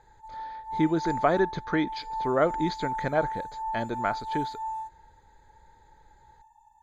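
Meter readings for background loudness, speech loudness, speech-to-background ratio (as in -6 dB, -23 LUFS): -35.0 LUFS, -28.5 LUFS, 6.5 dB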